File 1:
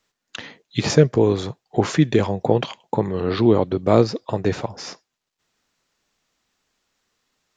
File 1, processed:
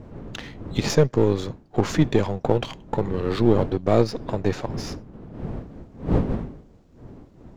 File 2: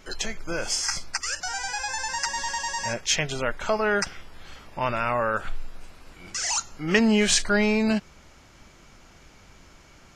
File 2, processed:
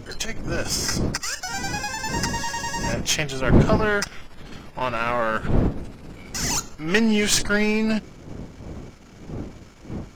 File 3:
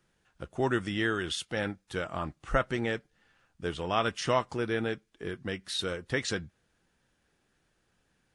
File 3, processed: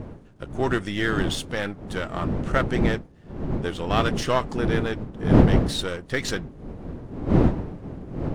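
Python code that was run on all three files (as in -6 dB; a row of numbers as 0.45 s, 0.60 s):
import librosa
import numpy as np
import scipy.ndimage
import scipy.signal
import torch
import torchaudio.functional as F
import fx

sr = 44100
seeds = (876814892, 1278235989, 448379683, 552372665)

y = np.where(x < 0.0, 10.0 ** (-7.0 / 20.0) * x, x)
y = fx.dmg_wind(y, sr, seeds[0], corner_hz=260.0, level_db=-32.0)
y = y * 10.0 ** (-24 / 20.0) / np.sqrt(np.mean(np.square(y)))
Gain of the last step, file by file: -0.5 dB, +3.5 dB, +6.5 dB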